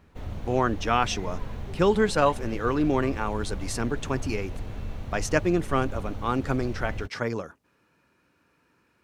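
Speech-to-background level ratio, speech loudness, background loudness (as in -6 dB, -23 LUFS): 11.0 dB, -27.0 LUFS, -38.0 LUFS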